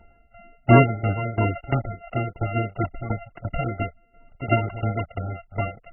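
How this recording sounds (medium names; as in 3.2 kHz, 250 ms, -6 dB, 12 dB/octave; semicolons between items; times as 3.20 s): a buzz of ramps at a fixed pitch in blocks of 64 samples; tremolo saw down 2.9 Hz, depth 85%; MP3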